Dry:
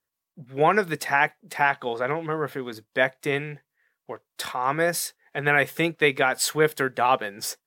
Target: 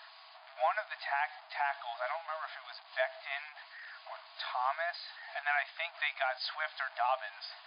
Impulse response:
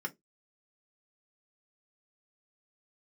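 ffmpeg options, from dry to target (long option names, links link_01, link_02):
-af "aeval=exprs='val(0)+0.5*0.0266*sgn(val(0))':channel_layout=same,afftfilt=real='re*between(b*sr/4096,620,5000)':imag='im*between(b*sr/4096,620,5000)':win_size=4096:overlap=0.75,equalizer=frequency=2200:width=0.44:gain=-5.5,alimiter=limit=-15.5dB:level=0:latency=1:release=260,volume=-5dB"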